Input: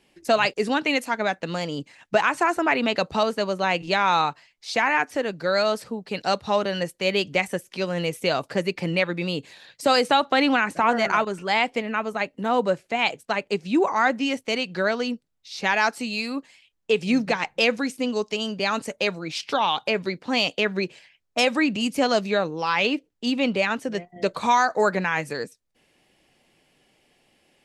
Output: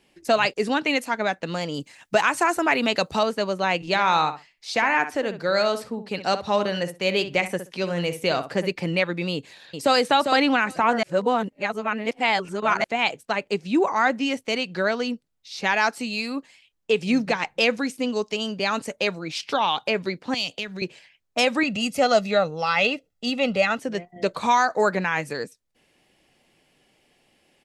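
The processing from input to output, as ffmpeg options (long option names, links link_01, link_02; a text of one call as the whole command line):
ffmpeg -i in.wav -filter_complex "[0:a]asettb=1/sr,asplit=3[link_01][link_02][link_03];[link_01]atrim=end=1.744[link_04];[link_02]atrim=start=1.74:end=3.19,asetpts=PTS-STARTPTS,afade=type=in:duration=0.004:curve=qsin,afade=type=out:start_time=1.446:duration=0.004:curve=qsin,highshelf=frequency=6200:gain=11.5[link_05];[link_03]atrim=start=3.186[link_06];[link_04][link_05]acrossfade=duration=0.004:curve1=hsin:curve2=qsin[link_07];[link_07][link_06]acrossfade=duration=0.004:curve1=qsin:curve2=hsin,asettb=1/sr,asplit=3[link_08][link_09][link_10];[link_08]atrim=end=3.874[link_11];[link_09]atrim=start=3.87:end=8.72,asetpts=PTS-STARTPTS,afade=type=in:duration=0.004:curve=qsin,afade=type=out:start_time=4.846:duration=0.004:curve=qsin,asplit=2[link_12][link_13];[link_13]adelay=63,lowpass=frequency=2500:poles=1,volume=-10dB,asplit=2[link_14][link_15];[link_15]adelay=63,lowpass=frequency=2500:poles=1,volume=0.17[link_16];[link_12][link_14][link_16]amix=inputs=3:normalize=0,atrim=end_sample=213885[link_17];[link_10]atrim=start=8.716[link_18];[link_11][link_17]acrossfade=duration=0.004:curve1=hsin:curve2=qsin[link_19];[link_19][link_18]acrossfade=duration=0.004:curve1=qsin:curve2=hsin,asplit=2[link_20][link_21];[link_21]afade=type=in:start_time=9.33:duration=0.01,afade=type=out:start_time=9.96:duration=0.01,aecho=0:1:400|800:0.530884|0.0530884[link_22];[link_20][link_22]amix=inputs=2:normalize=0,asettb=1/sr,asplit=3[link_23][link_24][link_25];[link_23]atrim=end=20.344[link_26];[link_24]atrim=start=20.34:end=20.82,asetpts=PTS-STARTPTS,afade=type=in:duration=0.004:curve=qsin,afade=type=out:start_time=0.476:duration=0.004:curve=qsin,acrossover=split=150|3000[link_27][link_28][link_29];[link_28]acompressor=threshold=-36dB:ratio=4:attack=3.2:release=140:knee=2.83:detection=peak[link_30];[link_27][link_30][link_29]amix=inputs=3:normalize=0[link_31];[link_25]atrim=start=20.816[link_32];[link_26][link_31]acrossfade=duration=0.004:curve1=hsin:curve2=qsin[link_33];[link_33][link_32]acrossfade=duration=0.004:curve1=qsin:curve2=hsin,asettb=1/sr,asplit=3[link_34][link_35][link_36];[link_34]atrim=end=21.634[link_37];[link_35]atrim=start=21.63:end=23.79,asetpts=PTS-STARTPTS,afade=type=in:duration=0.004:curve=qsin,afade=type=out:start_time=2.156:duration=0.004:curve=qsin,aecho=1:1:1.5:0.65,atrim=end_sample=95256[link_38];[link_36]atrim=start=23.786[link_39];[link_37][link_38]acrossfade=duration=0.004:curve1=hsin:curve2=qsin[link_40];[link_40][link_39]acrossfade=duration=0.004:curve1=qsin:curve2=hsin,asplit=3[link_41][link_42][link_43];[link_41]atrim=end=11.032[link_44];[link_42]atrim=start=11.028:end=12.842,asetpts=PTS-STARTPTS,areverse[link_45];[link_43]atrim=start=12.838[link_46];[link_44][link_45]acrossfade=duration=0.004:curve1=hsin:curve2=hsin[link_47];[link_47][link_46]acrossfade=duration=0.004:curve1=hsin:curve2=hsin" out.wav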